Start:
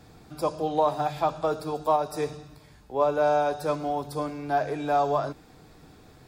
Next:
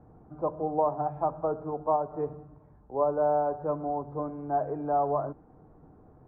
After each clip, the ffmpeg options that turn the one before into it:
ffmpeg -i in.wav -af "lowpass=frequency=1100:width=0.5412,lowpass=frequency=1100:width=1.3066,volume=-2.5dB" out.wav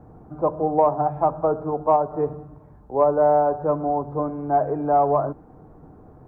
ffmpeg -i in.wav -af "acontrast=55,volume=2dB" out.wav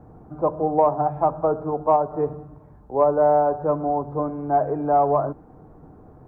ffmpeg -i in.wav -af anull out.wav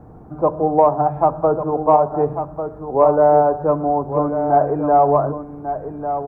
ffmpeg -i in.wav -af "aecho=1:1:1147:0.355,volume=4.5dB" out.wav

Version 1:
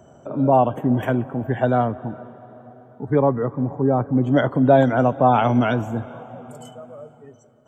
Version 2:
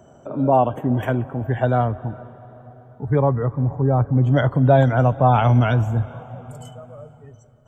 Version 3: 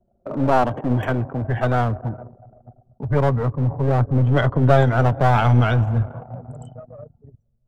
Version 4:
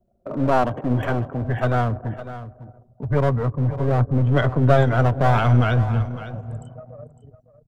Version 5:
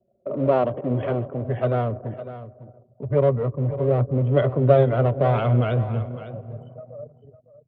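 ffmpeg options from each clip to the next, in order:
ffmpeg -i in.wav -af "asubboost=boost=9.5:cutoff=90" out.wav
ffmpeg -i in.wav -filter_complex "[0:a]anlmdn=3.98,acrossover=split=110|1200[link_01][link_02][link_03];[link_02]aeval=exprs='clip(val(0),-1,0.0447)':channel_layout=same[link_04];[link_01][link_04][link_03]amix=inputs=3:normalize=0,volume=2dB" out.wav
ffmpeg -i in.wav -af "bandreject=frequency=840:width=12,aecho=1:1:555:0.211,volume=-1dB" out.wav
ffmpeg -i in.wav -af "highpass=100,equalizer=frequency=130:width_type=q:width=4:gain=3,equalizer=frequency=400:width_type=q:width=4:gain=7,equalizer=frequency=570:width_type=q:width=4:gain=9,equalizer=frequency=850:width_type=q:width=4:gain=-5,equalizer=frequency=1600:width_type=q:width=4:gain=-8,lowpass=frequency=3400:width=0.5412,lowpass=frequency=3400:width=1.3066,volume=-4dB" out.wav

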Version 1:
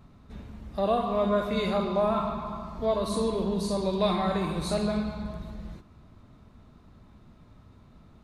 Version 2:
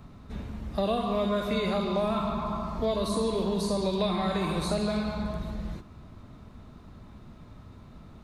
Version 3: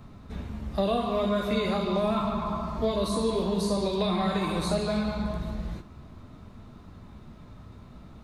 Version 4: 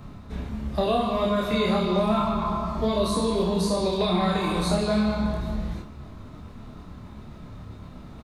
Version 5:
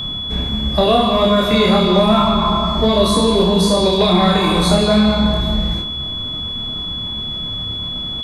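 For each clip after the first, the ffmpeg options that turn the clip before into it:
ffmpeg -i in.wav -filter_complex "[0:a]acrossover=split=430|2100[link_01][link_02][link_03];[link_01]acompressor=threshold=-34dB:ratio=4[link_04];[link_02]acompressor=threshold=-37dB:ratio=4[link_05];[link_03]acompressor=threshold=-43dB:ratio=4[link_06];[link_04][link_05][link_06]amix=inputs=3:normalize=0,volume=5.5dB" out.wav
ffmpeg -i in.wav -af "flanger=delay=8.6:depth=9.3:regen=-46:speed=0.45:shape=triangular,volume=5dB" out.wav
ffmpeg -i in.wav -filter_complex "[0:a]areverse,acompressor=mode=upward:threshold=-39dB:ratio=2.5,areverse,asplit=2[link_01][link_02];[link_02]adelay=28,volume=-3.5dB[link_03];[link_01][link_03]amix=inputs=2:normalize=0,volume=2dB" out.wav
ffmpeg -i in.wav -filter_complex "[0:a]asplit=2[link_01][link_02];[link_02]aeval=exprs='clip(val(0),-1,0.0891)':channel_layout=same,volume=-3dB[link_03];[link_01][link_03]amix=inputs=2:normalize=0,aeval=exprs='val(0)+0.0398*sin(2*PI*3400*n/s)':channel_layout=same,volume=5.5dB" out.wav

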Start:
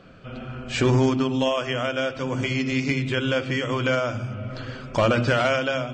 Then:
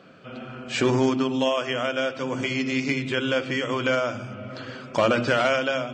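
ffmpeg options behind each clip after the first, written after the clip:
ffmpeg -i in.wav -af "highpass=180" out.wav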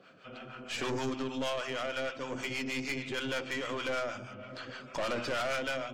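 ffmpeg -i in.wav -filter_complex "[0:a]lowshelf=frequency=420:gain=-8,acrossover=split=640[link_01][link_02];[link_01]aeval=exprs='val(0)*(1-0.7/2+0.7/2*cos(2*PI*6.4*n/s))':channel_layout=same[link_03];[link_02]aeval=exprs='val(0)*(1-0.7/2-0.7/2*cos(2*PI*6.4*n/s))':channel_layout=same[link_04];[link_03][link_04]amix=inputs=2:normalize=0,aeval=exprs='(tanh(28.2*val(0)+0.4)-tanh(0.4))/28.2':channel_layout=same" out.wav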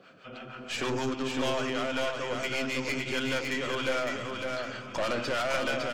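ffmpeg -i in.wav -af "aecho=1:1:557|1114|1671|2228:0.631|0.164|0.0427|0.0111,volume=3dB" out.wav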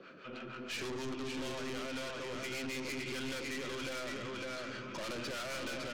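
ffmpeg -i in.wav -filter_complex "[0:a]highpass=150,equalizer=frequency=360:width_type=q:width=4:gain=6,equalizer=frequency=740:width_type=q:width=4:gain=-9,equalizer=frequency=3200:width_type=q:width=4:gain=-5,equalizer=frequency=5000:width_type=q:width=4:gain=-4,lowpass=frequency=5800:width=0.5412,lowpass=frequency=5800:width=1.3066,aeval=exprs='(tanh(63.1*val(0)+0.25)-tanh(0.25))/63.1':channel_layout=same,acrossover=split=220|3000[link_01][link_02][link_03];[link_02]acompressor=threshold=-55dB:ratio=1.5[link_04];[link_01][link_04][link_03]amix=inputs=3:normalize=0,volume=3dB" out.wav

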